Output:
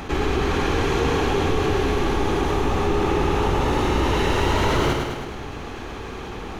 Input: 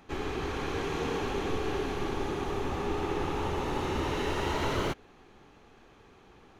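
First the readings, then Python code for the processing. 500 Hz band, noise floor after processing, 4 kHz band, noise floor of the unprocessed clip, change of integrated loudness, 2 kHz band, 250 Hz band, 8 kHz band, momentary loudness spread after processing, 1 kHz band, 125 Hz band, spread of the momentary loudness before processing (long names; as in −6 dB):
+10.5 dB, −33 dBFS, +10.5 dB, −57 dBFS, +10.5 dB, +10.5 dB, +10.5 dB, +10.5 dB, 13 LU, +10.5 dB, +12.5 dB, 3 LU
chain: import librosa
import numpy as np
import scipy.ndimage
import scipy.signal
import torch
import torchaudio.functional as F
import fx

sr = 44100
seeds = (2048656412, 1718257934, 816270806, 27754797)

y = fx.octave_divider(x, sr, octaves=2, level_db=-2.0)
y = fx.echo_feedback(y, sr, ms=105, feedback_pct=43, wet_db=-8.0)
y = fx.env_flatten(y, sr, amount_pct=50)
y = y * librosa.db_to_amplitude(7.5)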